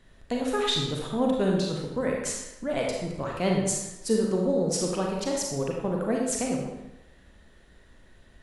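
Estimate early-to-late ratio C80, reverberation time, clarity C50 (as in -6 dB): 3.5 dB, 0.95 s, 1.0 dB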